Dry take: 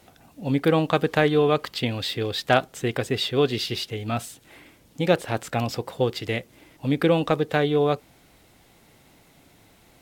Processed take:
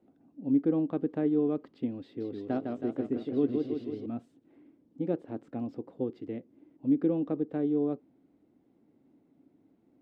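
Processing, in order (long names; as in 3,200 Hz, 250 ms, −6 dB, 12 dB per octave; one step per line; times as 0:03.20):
resonant band-pass 280 Hz, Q 3.5
0:02.04–0:04.06: feedback echo with a swinging delay time 161 ms, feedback 62%, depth 145 cents, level −4.5 dB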